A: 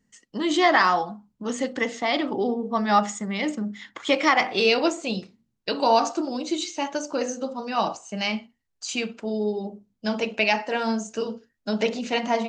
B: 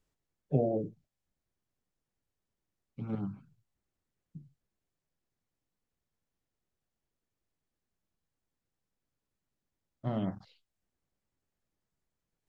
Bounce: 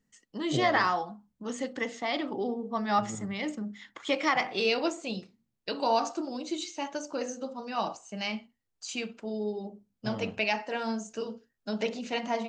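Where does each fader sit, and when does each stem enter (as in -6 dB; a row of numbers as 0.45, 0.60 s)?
-7.0, -4.5 dB; 0.00, 0.00 s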